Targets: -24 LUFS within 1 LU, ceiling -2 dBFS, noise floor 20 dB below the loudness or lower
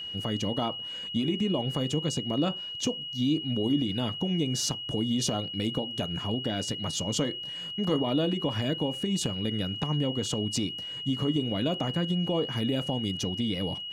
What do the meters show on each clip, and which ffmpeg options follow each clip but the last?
steady tone 2.9 kHz; tone level -35 dBFS; loudness -29.0 LUFS; peak level -16.0 dBFS; loudness target -24.0 LUFS
-> -af "bandreject=f=2900:w=30"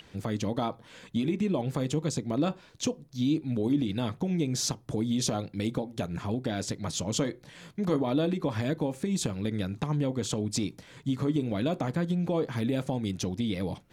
steady tone not found; loudness -30.5 LUFS; peak level -16.5 dBFS; loudness target -24.0 LUFS
-> -af "volume=2.11"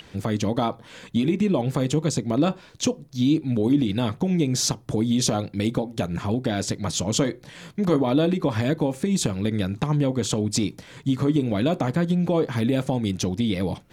loudness -24.0 LUFS; peak level -10.0 dBFS; noise floor -49 dBFS

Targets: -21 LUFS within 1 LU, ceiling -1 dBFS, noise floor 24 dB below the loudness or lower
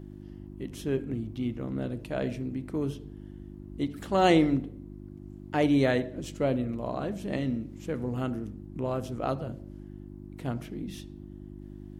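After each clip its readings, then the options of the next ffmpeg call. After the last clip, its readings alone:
hum 50 Hz; highest harmonic 350 Hz; hum level -41 dBFS; loudness -30.5 LUFS; peak level -10.0 dBFS; loudness target -21.0 LUFS
-> -af "bandreject=f=50:t=h:w=4,bandreject=f=100:t=h:w=4,bandreject=f=150:t=h:w=4,bandreject=f=200:t=h:w=4,bandreject=f=250:t=h:w=4,bandreject=f=300:t=h:w=4,bandreject=f=350:t=h:w=4"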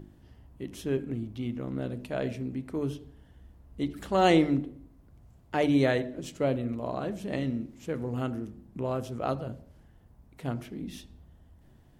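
hum not found; loudness -30.5 LUFS; peak level -11.0 dBFS; loudness target -21.0 LUFS
-> -af "volume=2.99"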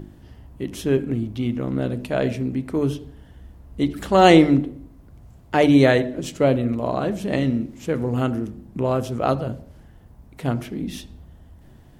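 loudness -21.0 LUFS; peak level -1.5 dBFS; noise floor -48 dBFS

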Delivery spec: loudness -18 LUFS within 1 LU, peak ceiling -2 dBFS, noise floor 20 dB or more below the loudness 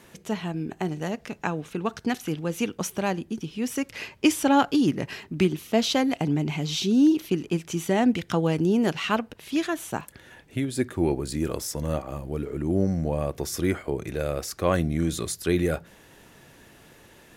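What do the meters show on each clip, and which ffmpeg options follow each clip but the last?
loudness -26.5 LUFS; peak level -7.5 dBFS; loudness target -18.0 LUFS
-> -af "volume=2.66,alimiter=limit=0.794:level=0:latency=1"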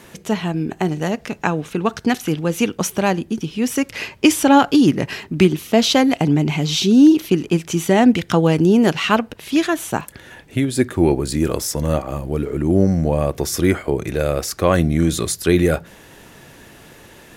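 loudness -18.0 LUFS; peak level -2.0 dBFS; noise floor -45 dBFS

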